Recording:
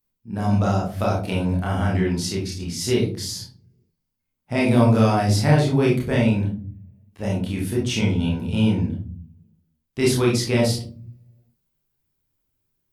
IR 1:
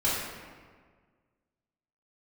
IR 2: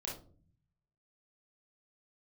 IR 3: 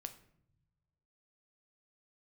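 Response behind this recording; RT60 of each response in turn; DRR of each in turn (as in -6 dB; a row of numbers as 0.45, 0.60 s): 2; 1.6 s, 0.45 s, not exponential; -10.0, -4.0, 8.0 dB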